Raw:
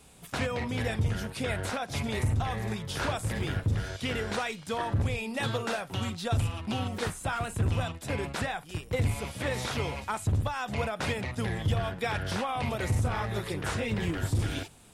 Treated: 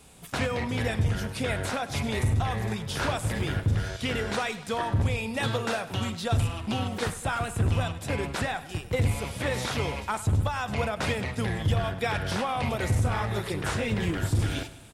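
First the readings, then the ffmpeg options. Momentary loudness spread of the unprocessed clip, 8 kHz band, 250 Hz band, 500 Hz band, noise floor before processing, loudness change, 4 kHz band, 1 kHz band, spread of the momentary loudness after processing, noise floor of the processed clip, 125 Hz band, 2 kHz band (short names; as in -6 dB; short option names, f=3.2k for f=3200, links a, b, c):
4 LU, +2.5 dB, +2.5 dB, +2.5 dB, -48 dBFS, +2.5 dB, +2.5 dB, +2.5 dB, 4 LU, -42 dBFS, +3.0 dB, +2.5 dB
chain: -af "aecho=1:1:101|202|303|404|505:0.158|0.0888|0.0497|0.0278|0.0156,volume=2.5dB"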